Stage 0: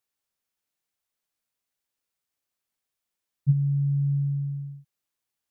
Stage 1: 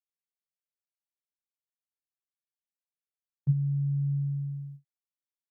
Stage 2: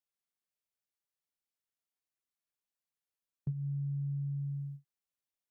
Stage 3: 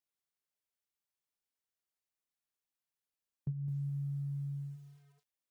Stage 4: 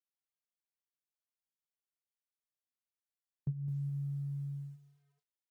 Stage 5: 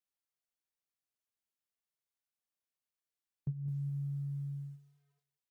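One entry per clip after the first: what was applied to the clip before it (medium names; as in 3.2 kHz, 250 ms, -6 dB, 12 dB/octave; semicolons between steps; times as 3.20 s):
gate with hold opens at -29 dBFS; trim -4 dB
compression, threshold -34 dBFS, peak gain reduction 13.5 dB
bit-crushed delay 211 ms, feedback 35%, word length 10-bit, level -11.5 dB; trim -1.5 dB
upward expansion 1.5:1, over -57 dBFS; trim +2 dB
delay 185 ms -17.5 dB; trim -1 dB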